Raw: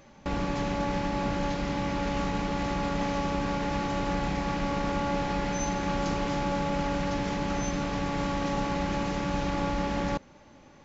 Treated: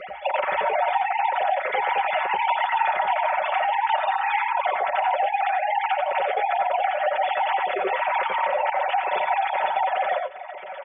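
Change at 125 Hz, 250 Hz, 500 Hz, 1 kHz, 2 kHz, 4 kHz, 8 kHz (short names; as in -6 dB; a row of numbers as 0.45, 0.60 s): under -30 dB, under -20 dB, +5.5 dB, +11.5 dB, +10.0 dB, +3.0 dB, n/a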